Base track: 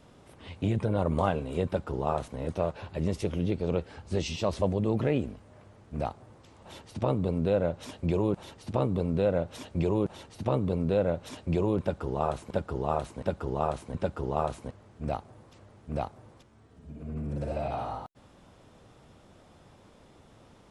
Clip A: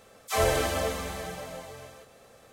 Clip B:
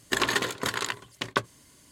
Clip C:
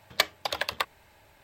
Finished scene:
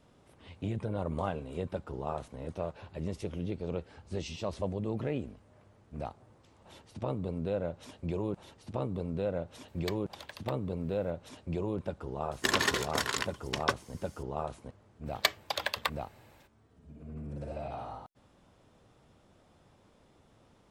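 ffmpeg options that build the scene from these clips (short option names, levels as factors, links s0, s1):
-filter_complex "[3:a]asplit=2[s0][s1];[0:a]volume=0.447[s2];[s0]acompressor=mode=upward:threshold=0.0141:ratio=4:attack=0.13:release=336:knee=2.83:detection=peak[s3];[2:a]equalizer=f=5500:t=o:w=0.21:g=7.5[s4];[s3]atrim=end=1.43,asetpts=PTS-STARTPTS,volume=0.141,afade=t=in:d=0.004:c=hsin,afade=t=out:st=1.426:d=0.004:c=hsin,adelay=9680[s5];[s4]atrim=end=1.91,asetpts=PTS-STARTPTS,volume=0.708,afade=t=in:d=0.004:c=hsin,afade=t=out:st=1.906:d=0.004:c=hsin,adelay=12320[s6];[s1]atrim=end=1.43,asetpts=PTS-STARTPTS,volume=0.708,afade=t=in:d=0.02,afade=t=out:st=1.41:d=0.02,adelay=15050[s7];[s2][s5][s6][s7]amix=inputs=4:normalize=0"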